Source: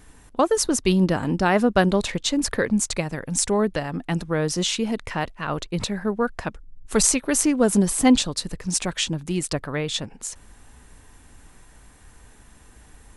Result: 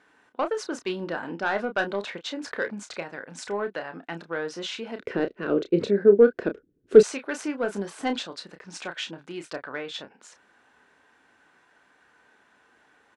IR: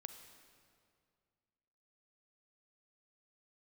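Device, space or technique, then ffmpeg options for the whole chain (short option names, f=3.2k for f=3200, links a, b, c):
intercom: -filter_complex "[0:a]highpass=360,lowpass=3.5k,equalizer=f=1.5k:t=o:w=0.2:g=9,asoftclip=type=tanh:threshold=-10.5dB,asplit=2[a][b];[b]adelay=30,volume=-8.5dB[c];[a][c]amix=inputs=2:normalize=0,asettb=1/sr,asplit=3[d][e][f];[d]atrim=end=4.994[g];[e]atrim=start=4.99:end=7.03,asetpts=PTS-STARTPTS,afade=t=in:d=0.004:c=qsin,afade=t=out:st=2.036:d=0.004:c=qsin,lowshelf=f=600:t=q:w=3:g=13[h];[f]atrim=start=7.026[i];[g][h]acrossfade=d=0.004:c1=hsin:c2=qsin[j];[j][i]acrossfade=d=0.004:c1=qsin:c2=hsin,volume=-5.5dB"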